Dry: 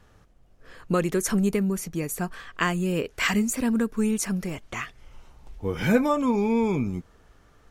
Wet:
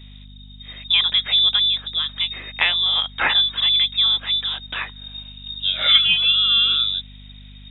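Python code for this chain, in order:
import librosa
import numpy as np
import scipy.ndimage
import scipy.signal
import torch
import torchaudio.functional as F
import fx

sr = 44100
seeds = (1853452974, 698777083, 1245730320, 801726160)

y = fx.freq_invert(x, sr, carrier_hz=3700)
y = fx.add_hum(y, sr, base_hz=50, snr_db=21)
y = F.gain(torch.from_numpy(y), 5.5).numpy()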